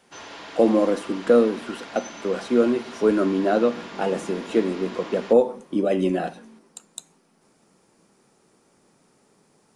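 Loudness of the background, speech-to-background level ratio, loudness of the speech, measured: −39.5 LKFS, 17.0 dB, −22.5 LKFS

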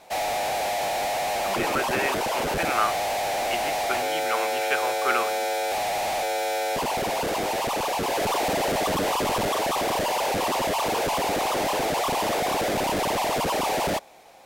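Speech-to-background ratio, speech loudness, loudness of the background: −4.0 dB, −29.5 LKFS, −25.5 LKFS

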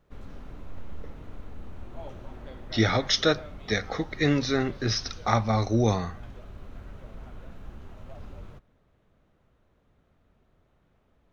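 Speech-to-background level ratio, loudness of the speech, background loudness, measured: 19.5 dB, −26.0 LKFS, −45.5 LKFS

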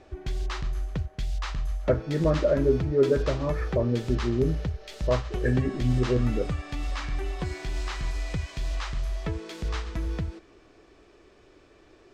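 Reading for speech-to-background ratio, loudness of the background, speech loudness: 6.0 dB, −33.0 LKFS, −27.0 LKFS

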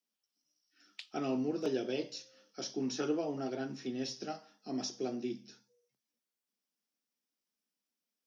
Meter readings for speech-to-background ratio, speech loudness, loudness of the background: 14.5 dB, −38.0 LKFS, −52.5 LKFS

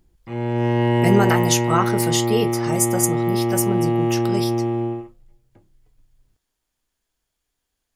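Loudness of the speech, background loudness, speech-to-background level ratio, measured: −22.5 LKFS, −21.0 LKFS, −1.5 dB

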